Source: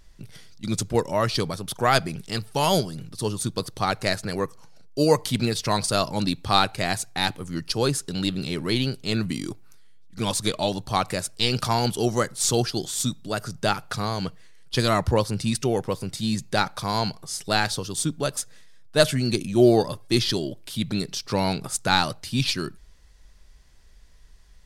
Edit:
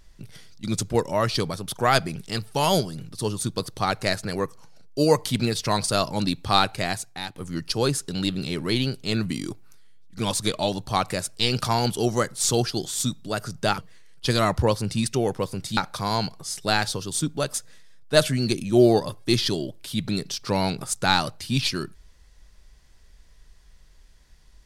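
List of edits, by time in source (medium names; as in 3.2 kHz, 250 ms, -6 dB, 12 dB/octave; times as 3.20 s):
6.77–7.36 s: fade out, to -15 dB
13.78–14.27 s: delete
16.26–16.60 s: delete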